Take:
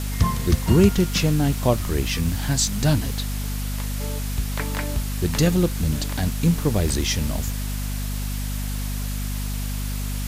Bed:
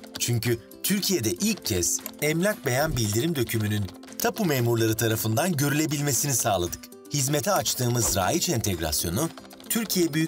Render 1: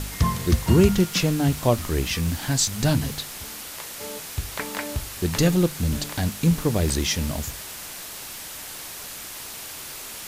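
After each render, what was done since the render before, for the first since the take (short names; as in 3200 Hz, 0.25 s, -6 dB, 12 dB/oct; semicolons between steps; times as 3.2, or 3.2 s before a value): de-hum 50 Hz, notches 5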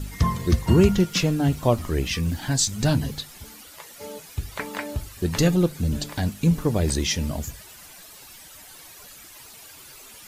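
denoiser 12 dB, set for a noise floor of -37 dBFS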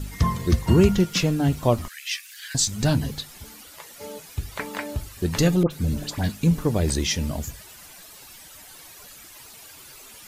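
1.88–2.55 steep high-pass 1600 Hz; 5.63–6.37 dispersion highs, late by 74 ms, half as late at 1600 Hz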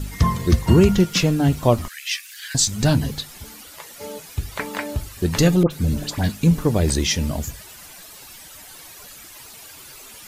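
gain +3.5 dB; limiter -3 dBFS, peak gain reduction 2.5 dB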